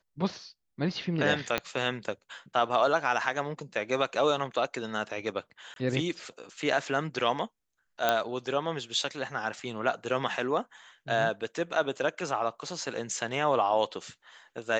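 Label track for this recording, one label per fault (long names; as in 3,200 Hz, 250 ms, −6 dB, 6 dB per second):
1.580000	1.580000	click −12 dBFS
5.740000	5.760000	drop-out 22 ms
8.090000	8.090000	click −10 dBFS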